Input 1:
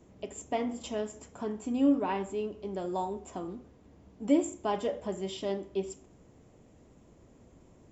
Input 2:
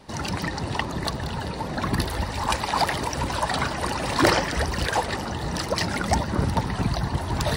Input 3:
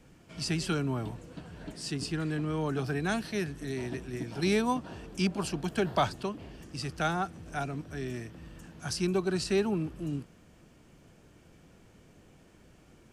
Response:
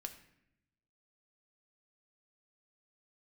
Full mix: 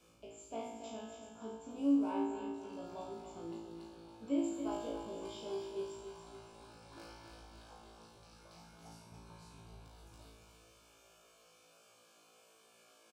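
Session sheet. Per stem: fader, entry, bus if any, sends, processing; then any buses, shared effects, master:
+1.5 dB, 0.00 s, no bus, no send, echo send -8 dB, dry
-14.0 dB, 2.45 s, bus A, no send, echo send -8.5 dB, dry
+0.5 dB, 0.00 s, bus A, no send, no echo send, comb 1.7 ms; compressor, threshold -36 dBFS, peak gain reduction 16 dB; spectral compressor 2:1; auto duck -18 dB, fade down 0.25 s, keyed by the first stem
bus A: 0.0 dB, HPF 330 Hz 12 dB/oct; compressor, threshold -49 dBFS, peak gain reduction 19 dB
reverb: off
echo: feedback echo 0.28 s, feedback 46%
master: Butterworth band-stop 1900 Hz, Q 4.2; resonator 56 Hz, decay 0.81 s, harmonics all, mix 100%

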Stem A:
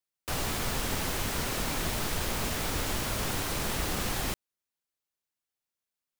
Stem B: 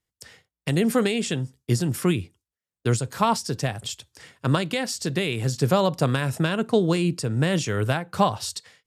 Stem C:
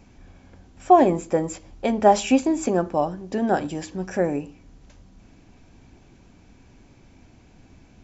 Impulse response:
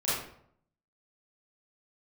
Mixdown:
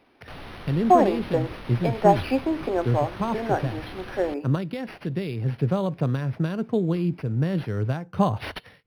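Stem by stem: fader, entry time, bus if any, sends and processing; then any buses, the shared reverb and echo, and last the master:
-9.0 dB, 0.00 s, no send, vibrato 11 Hz 17 cents; fast leveller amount 50%
+2.0 dB, 0.00 s, no send, low shelf 460 Hz +10.5 dB; auto duck -12 dB, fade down 0.75 s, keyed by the third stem
-2.0 dB, 0.00 s, no send, HPF 290 Hz 24 dB/oct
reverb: off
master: decimation joined by straight lines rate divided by 6×

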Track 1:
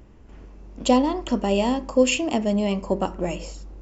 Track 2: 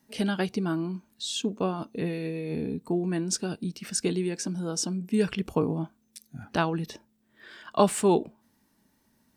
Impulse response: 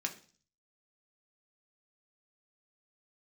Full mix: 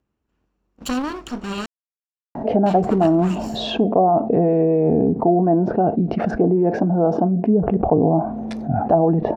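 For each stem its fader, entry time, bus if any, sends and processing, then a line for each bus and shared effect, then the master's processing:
-0.5 dB, 0.00 s, muted 1.66–2.66, no send, minimum comb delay 0.7 ms; HPF 120 Hz 6 dB/oct; one-sided clip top -27 dBFS
+0.5 dB, 2.35 s, send -17.5 dB, treble ducked by the level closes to 350 Hz, closed at -20 dBFS; synth low-pass 710 Hz, resonance Q 6.6; fast leveller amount 70%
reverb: on, RT60 0.40 s, pre-delay 3 ms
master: gate -39 dBFS, range -21 dB

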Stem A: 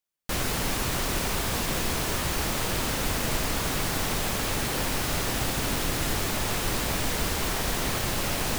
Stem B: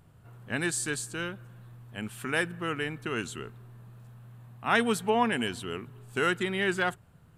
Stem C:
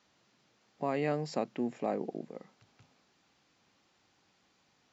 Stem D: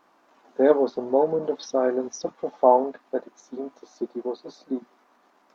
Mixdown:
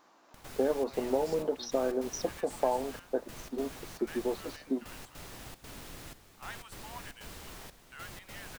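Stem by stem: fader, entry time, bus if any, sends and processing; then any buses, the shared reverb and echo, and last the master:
-19.0 dB, 0.05 s, no send, step gate ".xx.xxxx.xxxxx.." 153 bpm -12 dB
-19.0 dB, 1.75 s, no send, inverse Chebyshev high-pass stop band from 360 Hz
-10.5 dB, 0.00 s, no send, tilt +4.5 dB/oct; limiter -30.5 dBFS, peak gain reduction 10 dB
-1.5 dB, 0.00 s, no send, compressor, threshold -24 dBFS, peak gain reduction 13 dB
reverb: off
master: dry

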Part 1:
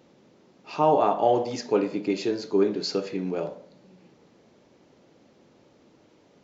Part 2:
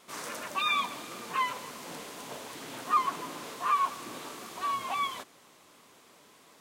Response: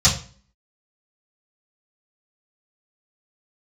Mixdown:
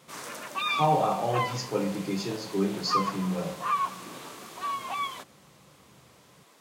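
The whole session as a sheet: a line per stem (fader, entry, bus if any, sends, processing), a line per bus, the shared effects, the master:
-11.0 dB, 0.00 s, send -12 dB, dry
-0.5 dB, 0.00 s, no send, dry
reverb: on, RT60 0.40 s, pre-delay 3 ms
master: low shelf 100 Hz -5 dB

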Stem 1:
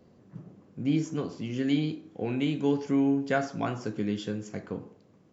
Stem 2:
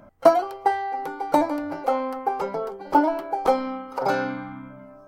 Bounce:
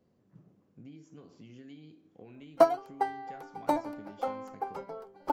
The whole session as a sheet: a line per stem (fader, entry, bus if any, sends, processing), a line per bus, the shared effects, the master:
-12.5 dB, 0.00 s, no send, compressor 6:1, threshold -35 dBFS, peak gain reduction 14 dB
-5.0 dB, 2.35 s, no send, upward expander 1.5:1, over -35 dBFS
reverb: off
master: dry

